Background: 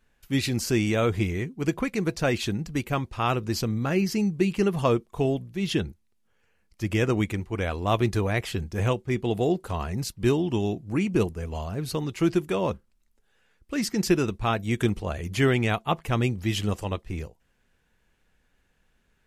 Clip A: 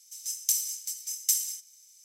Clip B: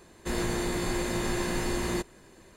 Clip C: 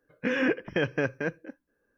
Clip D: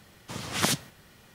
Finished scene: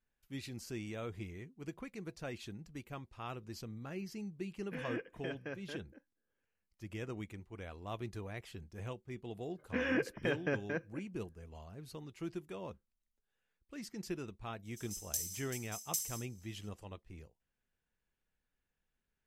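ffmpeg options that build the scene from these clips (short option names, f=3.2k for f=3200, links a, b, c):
-filter_complex "[3:a]asplit=2[a][b];[0:a]volume=-19dB[c];[a]equalizer=f=3.5k:t=o:w=0.77:g=4,atrim=end=1.97,asetpts=PTS-STARTPTS,volume=-16.5dB,afade=t=in:d=0.004:c=hsin,afade=t=out:st=1.966:d=0.004:c=hsin,adelay=4480[d];[b]atrim=end=1.97,asetpts=PTS-STARTPTS,volume=-7.5dB,afade=t=in:d=0.004:c=hsin,afade=t=out:st=1.966:d=0.004:c=hsin,adelay=9490[e];[1:a]atrim=end=2.04,asetpts=PTS-STARTPTS,volume=-11.5dB,afade=t=in:d=0.004:c=hsin,afade=t=out:st=2.036:d=0.004:c=hsin,adelay=14650[f];[c][d][e][f]amix=inputs=4:normalize=0"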